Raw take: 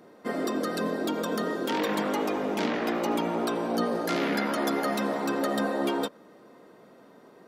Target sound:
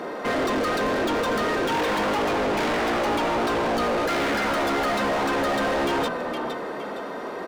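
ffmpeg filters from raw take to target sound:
ffmpeg -i in.wav -filter_complex "[0:a]asplit=3[link_01][link_02][link_03];[link_02]adelay=464,afreqshift=-33,volume=-21dB[link_04];[link_03]adelay=928,afreqshift=-66,volume=-31.2dB[link_05];[link_01][link_04][link_05]amix=inputs=3:normalize=0,asplit=2[link_06][link_07];[link_07]highpass=frequency=720:poles=1,volume=35dB,asoftclip=type=tanh:threshold=-15dB[link_08];[link_06][link_08]amix=inputs=2:normalize=0,lowpass=frequency=2200:poles=1,volume=-6dB,volume=-2dB" out.wav

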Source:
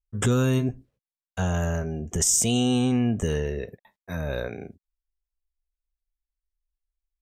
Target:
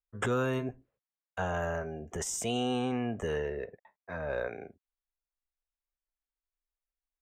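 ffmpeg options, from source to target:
ffmpeg -i in.wav -filter_complex "[0:a]acrossover=split=430 2400:gain=0.224 1 0.178[link_01][link_02][link_03];[link_01][link_02][link_03]amix=inputs=3:normalize=0,asettb=1/sr,asplit=3[link_04][link_05][link_06];[link_04]atrim=end=3.484[link_07];[link_05]atrim=start=3.48:end=4.41,asetpts=PTS-STARTPTS,afade=type=in:duration=0.004:curve=qsin,afade=type=out:start_time=0.926:duration=0.004:curve=qsin,adynamicsmooth=sensitivity=2.5:basefreq=3700[link_08];[link_06]atrim=start=4.406[link_09];[link_07][link_08]acrossfade=duration=0.004:curve1=hsin:curve2=qsin[link_10];[link_10][link_09]acrossfade=duration=0.004:curve1=qsin:curve2=hsin" out.wav

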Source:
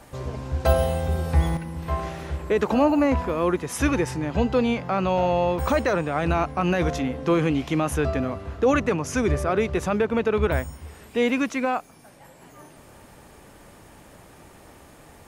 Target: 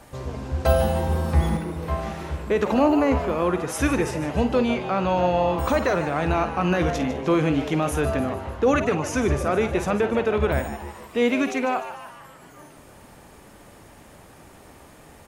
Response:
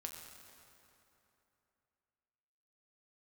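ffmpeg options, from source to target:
-filter_complex "[0:a]asplit=2[link_01][link_02];[link_02]adelay=50,volume=-12dB[link_03];[link_01][link_03]amix=inputs=2:normalize=0,asplit=7[link_04][link_05][link_06][link_07][link_08][link_09][link_10];[link_05]adelay=150,afreqshift=140,volume=-12dB[link_11];[link_06]adelay=300,afreqshift=280,volume=-17.5dB[link_12];[link_07]adelay=450,afreqshift=420,volume=-23dB[link_13];[link_08]adelay=600,afreqshift=560,volume=-28.5dB[link_14];[link_09]adelay=750,afreqshift=700,volume=-34.1dB[link_15];[link_10]adelay=900,afreqshift=840,volume=-39.6dB[link_16];[link_04][link_11][link_12][link_13][link_14][link_15][link_16]amix=inputs=7:normalize=0"

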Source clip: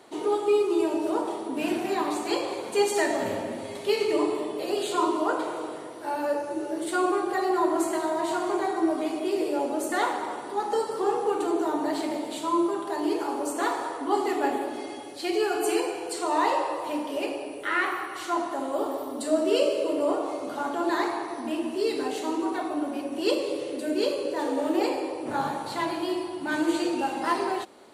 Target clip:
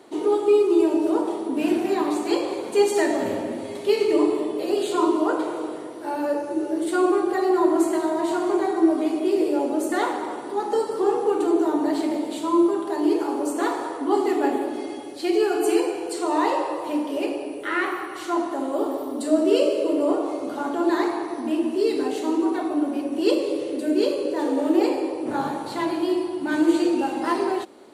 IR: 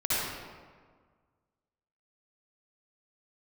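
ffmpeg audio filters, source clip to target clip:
-af "equalizer=frequency=320:width=1.2:gain=7"

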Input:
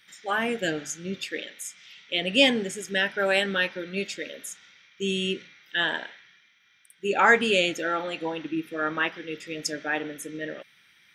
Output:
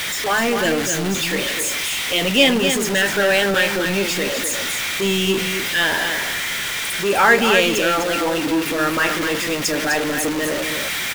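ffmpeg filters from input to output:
ffmpeg -i in.wav -af "aeval=exprs='val(0)+0.5*0.0794*sgn(val(0))':channel_layout=same,aecho=1:1:253:0.473,volume=3dB" out.wav

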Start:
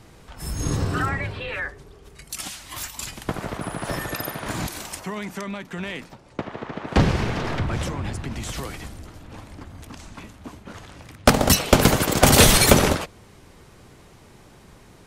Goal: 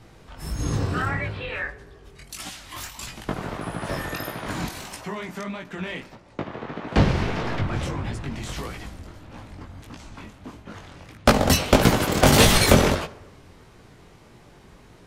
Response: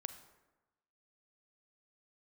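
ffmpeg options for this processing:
-filter_complex "[0:a]flanger=delay=17:depth=6.4:speed=1.6,asplit=2[link_01][link_02];[1:a]atrim=start_sample=2205,lowpass=6600[link_03];[link_02][link_03]afir=irnorm=-1:irlink=0,volume=-1dB[link_04];[link_01][link_04]amix=inputs=2:normalize=0,volume=-2dB"

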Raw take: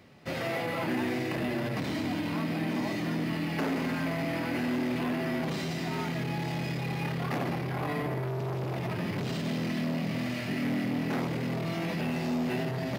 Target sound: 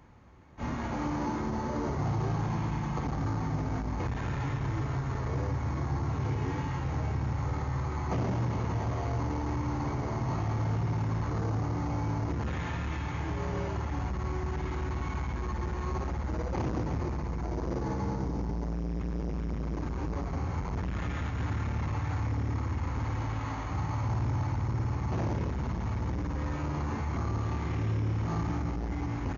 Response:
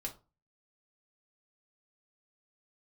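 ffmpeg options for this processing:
-af "asetrate=19492,aresample=44100"

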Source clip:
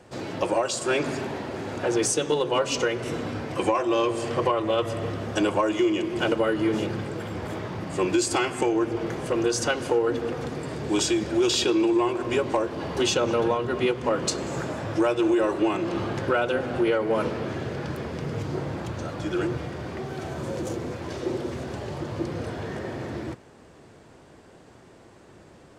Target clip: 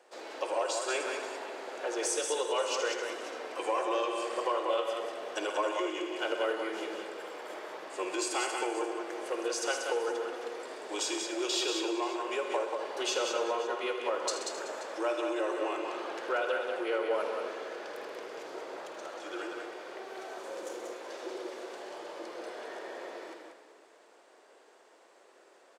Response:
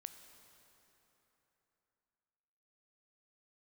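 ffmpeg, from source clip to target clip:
-filter_complex "[0:a]highpass=frequency=420:width=0.5412,highpass=frequency=420:width=1.3066,aecho=1:1:52|129|186|292|380|530:0.237|0.251|0.562|0.119|0.126|0.133,asplit=2[link_01][link_02];[1:a]atrim=start_sample=2205,adelay=79[link_03];[link_02][link_03]afir=irnorm=-1:irlink=0,volume=-5.5dB[link_04];[link_01][link_04]amix=inputs=2:normalize=0,volume=-7.5dB"

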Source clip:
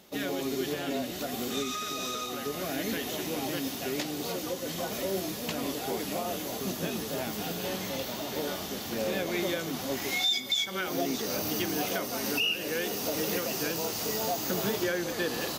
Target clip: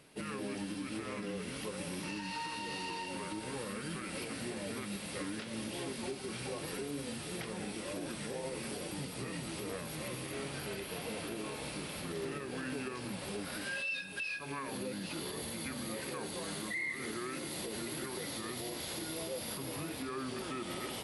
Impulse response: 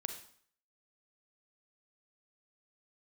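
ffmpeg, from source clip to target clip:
-filter_complex "[0:a]alimiter=level_in=2dB:limit=-24dB:level=0:latency=1:release=128,volume=-2dB,asplit=2[link_01][link_02];[link_02]highpass=370[link_03];[1:a]atrim=start_sample=2205,lowpass=4200[link_04];[link_03][link_04]afir=irnorm=-1:irlink=0,volume=-10dB[link_05];[link_01][link_05]amix=inputs=2:normalize=0,asetrate=32667,aresample=44100,volume=-5dB"

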